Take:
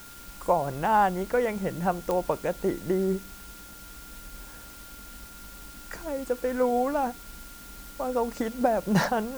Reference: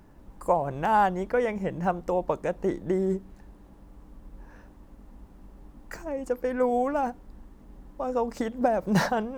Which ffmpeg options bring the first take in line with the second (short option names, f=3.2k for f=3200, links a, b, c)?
-af "adeclick=t=4,bandreject=f=1.4k:w=30,afwtdn=0.004"